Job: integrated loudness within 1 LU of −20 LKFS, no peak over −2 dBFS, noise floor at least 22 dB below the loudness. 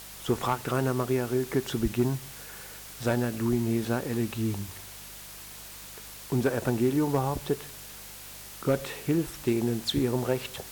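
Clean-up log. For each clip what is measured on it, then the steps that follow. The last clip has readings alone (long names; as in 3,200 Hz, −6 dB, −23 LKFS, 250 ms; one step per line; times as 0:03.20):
mains hum 50 Hz; hum harmonics up to 200 Hz; level of the hum −52 dBFS; background noise floor −44 dBFS; target noise floor −51 dBFS; integrated loudness −29.0 LKFS; sample peak −14.5 dBFS; target loudness −20.0 LKFS
→ hum removal 50 Hz, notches 4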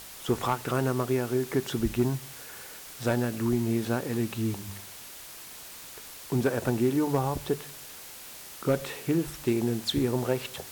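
mains hum none found; background noise floor −45 dBFS; target noise floor −51 dBFS
→ noise reduction from a noise print 6 dB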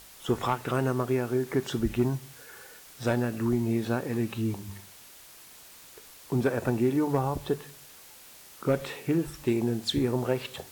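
background noise floor −51 dBFS; integrated loudness −29.0 LKFS; sample peak −14.5 dBFS; target loudness −20.0 LKFS
→ level +9 dB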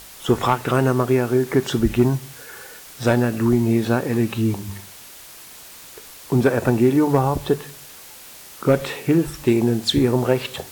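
integrated loudness −20.0 LKFS; sample peak −5.5 dBFS; background noise floor −42 dBFS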